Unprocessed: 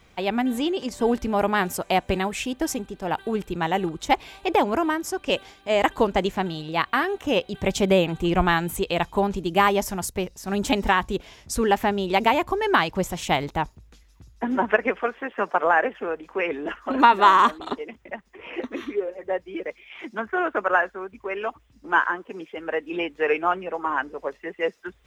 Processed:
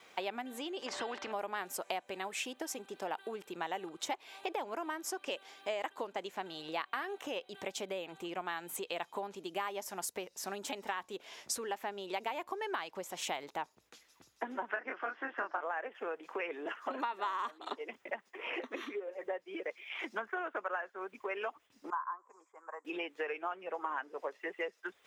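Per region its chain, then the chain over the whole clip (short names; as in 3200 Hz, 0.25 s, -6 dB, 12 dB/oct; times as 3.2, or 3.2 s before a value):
0.86–1.32 tape spacing loss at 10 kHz 28 dB + notch 2300 Hz, Q 18 + spectral compressor 2:1
14.71–15.61 speaker cabinet 200–5900 Hz, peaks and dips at 310 Hz +10 dB, 460 Hz -9 dB, 1500 Hz +6 dB, 2400 Hz -5 dB, 3400 Hz -4 dB, 5400 Hz +3 dB + doubler 26 ms -3 dB
21.9–22.85 double band-pass 2800 Hz, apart 2.8 oct + treble ducked by the level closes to 2700 Hz, closed at -25.5 dBFS
whole clip: compressor 12:1, threshold -33 dBFS; HPF 430 Hz 12 dB/oct; gate with hold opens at -59 dBFS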